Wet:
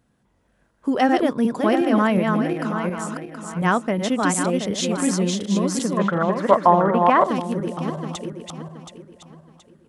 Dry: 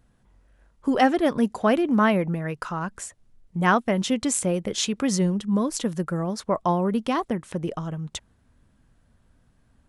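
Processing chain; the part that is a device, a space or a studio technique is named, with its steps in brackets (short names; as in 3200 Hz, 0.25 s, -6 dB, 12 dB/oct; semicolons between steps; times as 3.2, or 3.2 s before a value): regenerating reverse delay 0.362 s, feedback 54%, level -3 dB; 5.97–7.24 EQ curve 300 Hz 0 dB, 630 Hz +9 dB, 1900 Hz +12 dB, 5500 Hz -13 dB; filter by subtraction (in parallel: LPF 220 Hz 12 dB/oct + phase invert); on the sum: gain -1 dB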